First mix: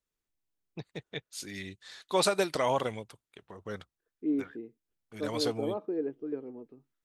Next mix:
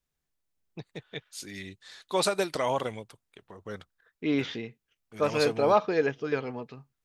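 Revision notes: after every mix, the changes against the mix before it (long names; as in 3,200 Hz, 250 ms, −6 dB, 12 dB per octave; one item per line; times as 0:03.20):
second voice: remove resonant band-pass 320 Hz, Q 3.5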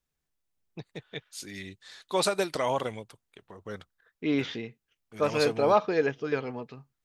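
nothing changed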